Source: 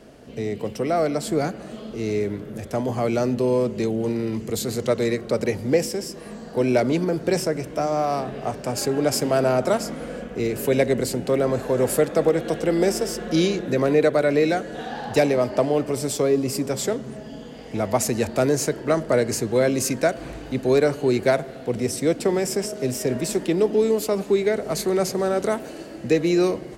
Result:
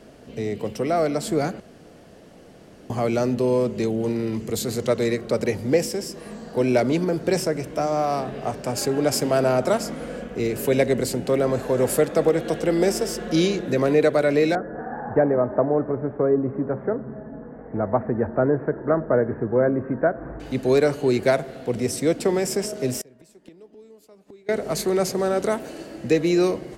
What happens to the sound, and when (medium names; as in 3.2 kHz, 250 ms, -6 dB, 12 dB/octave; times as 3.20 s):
1.60–2.90 s: room tone
14.55–20.40 s: steep low-pass 1.7 kHz 48 dB/octave
22.99–24.49 s: inverted gate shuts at -18 dBFS, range -28 dB